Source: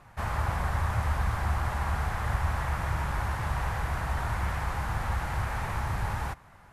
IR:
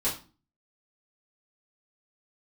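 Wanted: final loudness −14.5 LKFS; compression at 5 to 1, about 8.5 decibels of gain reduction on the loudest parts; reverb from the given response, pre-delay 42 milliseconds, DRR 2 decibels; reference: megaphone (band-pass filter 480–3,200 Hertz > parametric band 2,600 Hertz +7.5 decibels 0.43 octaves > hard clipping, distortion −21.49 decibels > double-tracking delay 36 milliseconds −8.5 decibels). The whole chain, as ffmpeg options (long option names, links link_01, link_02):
-filter_complex "[0:a]acompressor=threshold=-32dB:ratio=5,asplit=2[link_01][link_02];[1:a]atrim=start_sample=2205,adelay=42[link_03];[link_02][link_03]afir=irnorm=-1:irlink=0,volume=-10dB[link_04];[link_01][link_04]amix=inputs=2:normalize=0,highpass=480,lowpass=3200,equalizer=frequency=2600:width_type=o:width=0.43:gain=7.5,asoftclip=type=hard:threshold=-32dB,asplit=2[link_05][link_06];[link_06]adelay=36,volume=-8.5dB[link_07];[link_05][link_07]amix=inputs=2:normalize=0,volume=23.5dB"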